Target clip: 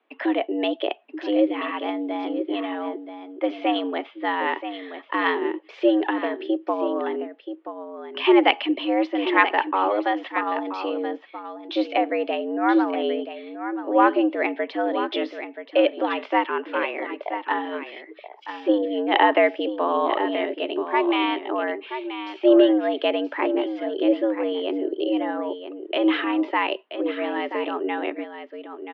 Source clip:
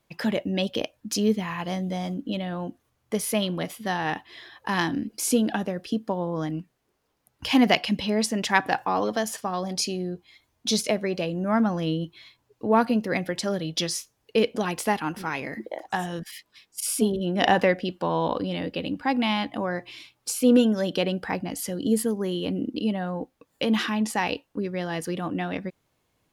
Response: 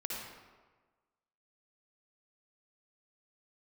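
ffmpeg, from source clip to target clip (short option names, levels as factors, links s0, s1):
-filter_complex "[0:a]atempo=0.91,asplit=2[s0][s1];[s1]aecho=0:1:979:0.316[s2];[s0][s2]amix=inputs=2:normalize=0,highpass=f=180:t=q:w=0.5412,highpass=f=180:t=q:w=1.307,lowpass=f=3100:t=q:w=0.5176,lowpass=f=3100:t=q:w=0.7071,lowpass=f=3100:t=q:w=1.932,afreqshift=100,volume=1.41"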